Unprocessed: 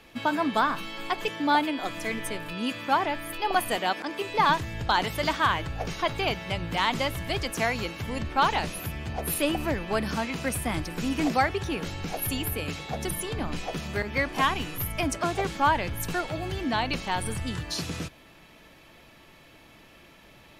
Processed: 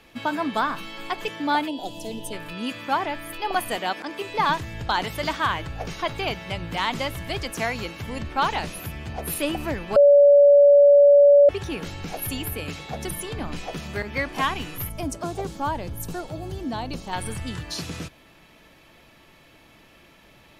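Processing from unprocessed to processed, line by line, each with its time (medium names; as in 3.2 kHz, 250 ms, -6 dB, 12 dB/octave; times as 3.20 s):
1.68–2.33 s: time-frequency box 1–2.5 kHz -22 dB
9.96–11.49 s: bleep 572 Hz -9.5 dBFS
14.89–17.13 s: peaking EQ 2.1 kHz -12 dB 1.8 oct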